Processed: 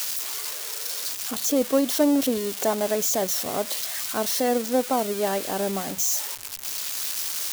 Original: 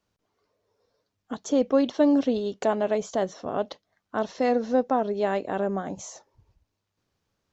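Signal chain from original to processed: switching spikes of -18 dBFS

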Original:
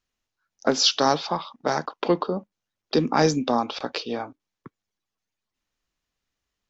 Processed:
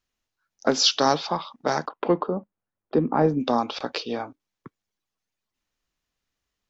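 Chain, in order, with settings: 1.88–3.39 LPF 2100 Hz -> 1000 Hz 12 dB/oct

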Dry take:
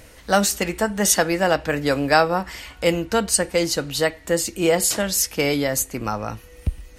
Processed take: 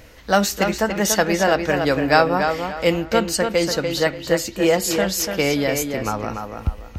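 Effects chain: bell 9300 Hz -12.5 dB 0.53 oct; on a send: tape echo 0.289 s, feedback 31%, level -5 dB, low-pass 4200 Hz; on the sum: gain +1 dB

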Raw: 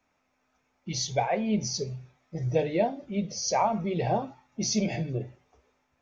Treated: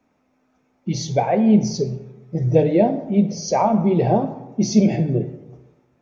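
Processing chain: bell 250 Hz +13.5 dB 3 oct; reverb RT60 1.1 s, pre-delay 38 ms, DRR 11.5 dB

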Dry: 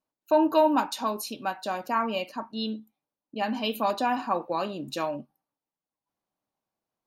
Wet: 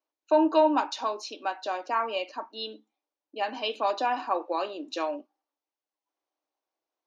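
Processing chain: Chebyshev band-pass 300–6300 Hz, order 4

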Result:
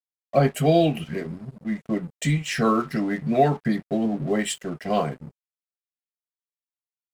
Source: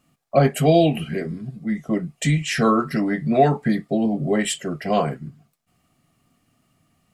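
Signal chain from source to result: crossover distortion -41.5 dBFS; gain -2.5 dB

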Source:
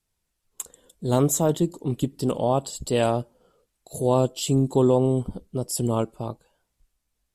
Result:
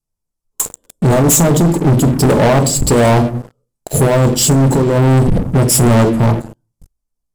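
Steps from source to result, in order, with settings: band shelf 2500 Hz -8.5 dB; negative-ratio compressor -22 dBFS, ratio -0.5; low shelf 320 Hz +5 dB; on a send at -7 dB: reverb, pre-delay 3 ms; on the sum: sample leveller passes 5

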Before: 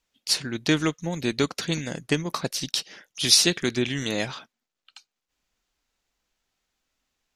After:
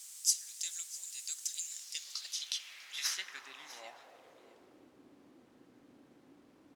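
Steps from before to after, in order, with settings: tracing distortion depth 0.039 ms; LPF 12000 Hz; pre-emphasis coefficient 0.97; notch 4000 Hz, Q 9.2; in parallel at -6 dB: requantised 6-bit, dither triangular; on the sum: band-pass sweep 6900 Hz -> 250 Hz, 1.76–5.36; echo 0.705 s -18.5 dB; on a send at -11 dB: reverb RT60 3.5 s, pre-delay 3 ms; on the sum: speed mistake 44.1 kHz file played as 48 kHz

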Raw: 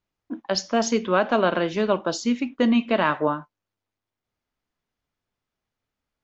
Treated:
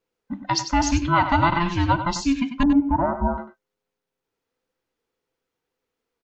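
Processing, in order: band inversion scrambler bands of 500 Hz; 2.63–3.38 LPF 1000 Hz 24 dB/oct; on a send: echo 96 ms -10 dB; on the sum: gain +1.5 dB

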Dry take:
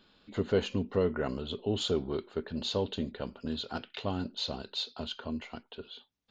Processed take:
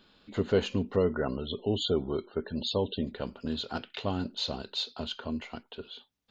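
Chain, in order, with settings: 0.96–3.07 loudest bins only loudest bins 64; gain +2 dB

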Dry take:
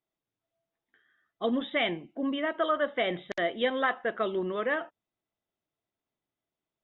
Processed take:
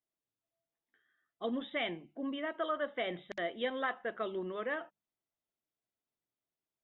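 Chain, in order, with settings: notches 50/100/150/200 Hz; gain -7.5 dB

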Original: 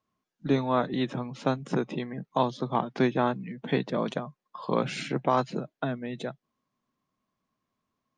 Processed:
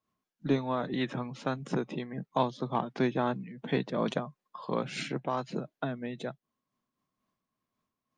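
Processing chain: in parallel at -9 dB: soft clip -19.5 dBFS, distortion -12 dB; 0.86–1.54 on the sum: dynamic EQ 1800 Hz, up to +7 dB, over -43 dBFS, Q 1.1; noise-modulated level, depth 65%; gain -1.5 dB

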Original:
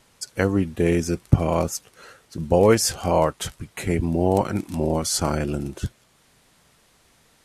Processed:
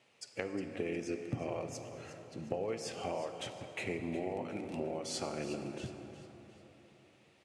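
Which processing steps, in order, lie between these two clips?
tone controls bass -12 dB, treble -11 dB; compressor 12:1, threshold -27 dBFS, peak gain reduction 14.5 dB; speaker cabinet 110–9500 Hz, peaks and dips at 120 Hz +8 dB, 1000 Hz -7 dB, 1500 Hz -8 dB, 2600 Hz +6 dB; feedback echo 0.36 s, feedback 42%, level -13.5 dB; plate-style reverb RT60 4 s, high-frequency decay 0.5×, DRR 7 dB; gain -6 dB

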